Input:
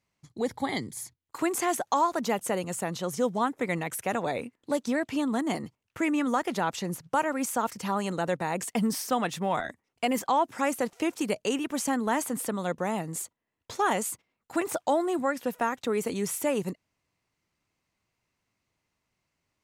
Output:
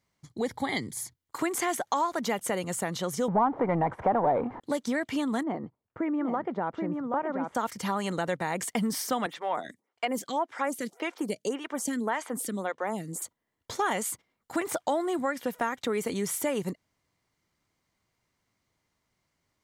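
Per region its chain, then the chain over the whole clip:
3.28–4.60 s: jump at every zero crossing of -41.5 dBFS + waveshaping leveller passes 2 + resonant low-pass 900 Hz, resonance Q 2.7
5.43–7.55 s: low-pass 1 kHz + bass shelf 170 Hz -7 dB + delay 778 ms -5.5 dB
9.26–13.22 s: high-pass 180 Hz + peaking EQ 14 kHz -4.5 dB 0.4 oct + lamp-driven phase shifter 1.8 Hz
whole clip: band-stop 2.6 kHz, Q 7.7; dynamic bell 2.4 kHz, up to +5 dB, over -44 dBFS, Q 1.1; compression 2:1, threshold -31 dBFS; trim +2.5 dB

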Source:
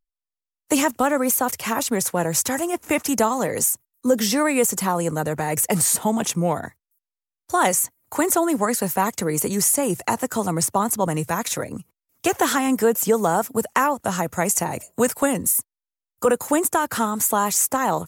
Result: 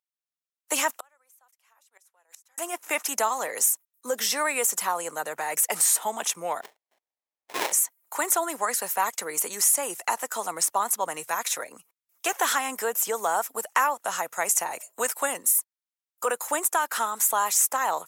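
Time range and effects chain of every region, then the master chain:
0.90–2.58 s: high-pass 600 Hz + inverted gate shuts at -19 dBFS, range -36 dB
6.61–7.72 s: steep high-pass 810 Hz 96 dB/octave + treble shelf 11 kHz +6.5 dB + sample-rate reducer 1.4 kHz, jitter 20%
whole clip: high-pass 770 Hz 12 dB/octave; band-stop 4.6 kHz, Q 21; trim -1.5 dB

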